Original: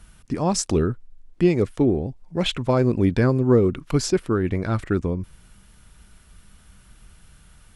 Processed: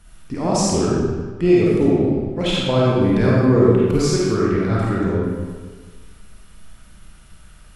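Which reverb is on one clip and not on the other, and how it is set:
comb and all-pass reverb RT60 1.5 s, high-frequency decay 0.8×, pre-delay 10 ms, DRR −6.5 dB
level −2.5 dB

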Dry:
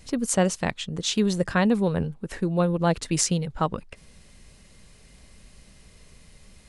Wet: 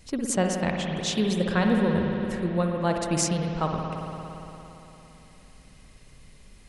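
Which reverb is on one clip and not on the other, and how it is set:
spring reverb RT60 3.5 s, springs 56 ms, chirp 65 ms, DRR 1 dB
level −3 dB

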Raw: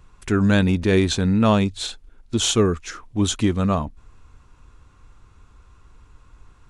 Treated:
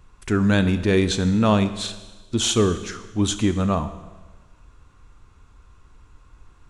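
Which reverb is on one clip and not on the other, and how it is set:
four-comb reverb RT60 1.3 s, combs from 26 ms, DRR 11 dB
level −1 dB

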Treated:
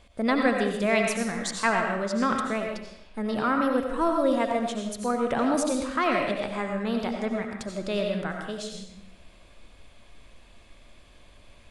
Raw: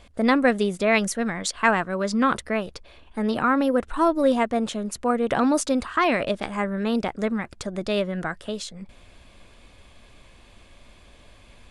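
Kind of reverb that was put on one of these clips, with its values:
comb and all-pass reverb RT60 0.77 s, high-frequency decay 0.95×, pre-delay 50 ms, DRR 2 dB
level −5 dB

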